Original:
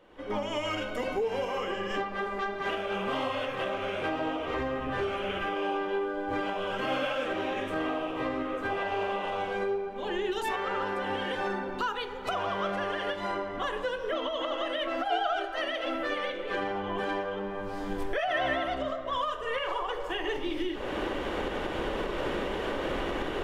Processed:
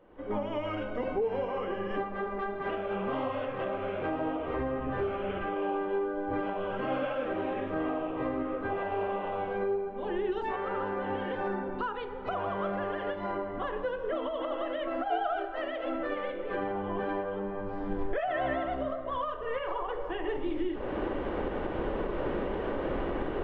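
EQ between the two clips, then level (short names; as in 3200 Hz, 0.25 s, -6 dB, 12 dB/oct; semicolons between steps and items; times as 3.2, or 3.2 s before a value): tape spacing loss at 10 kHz 44 dB; +2.0 dB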